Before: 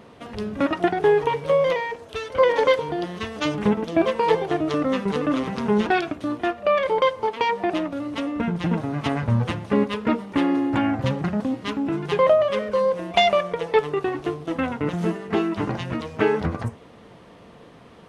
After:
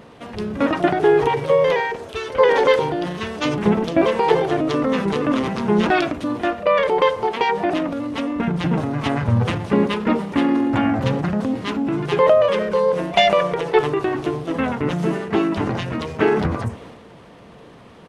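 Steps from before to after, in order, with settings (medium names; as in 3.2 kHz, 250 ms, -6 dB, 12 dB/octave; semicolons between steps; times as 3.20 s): harmony voices -3 st -8 dB; transient shaper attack 0 dB, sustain +6 dB; trim +2 dB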